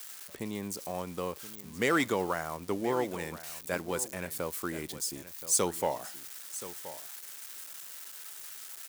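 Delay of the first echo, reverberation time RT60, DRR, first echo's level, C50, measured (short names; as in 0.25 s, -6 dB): 1.025 s, none, none, -14.5 dB, none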